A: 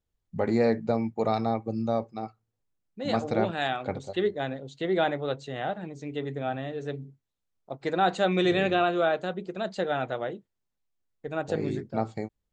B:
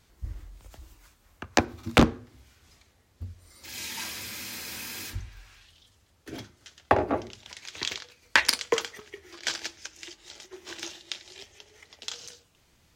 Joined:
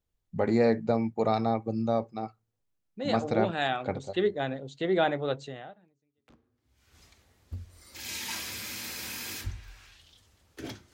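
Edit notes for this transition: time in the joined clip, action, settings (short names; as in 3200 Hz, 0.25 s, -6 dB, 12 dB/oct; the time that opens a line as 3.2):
A
6.2 switch to B from 1.89 s, crossfade 1.50 s exponential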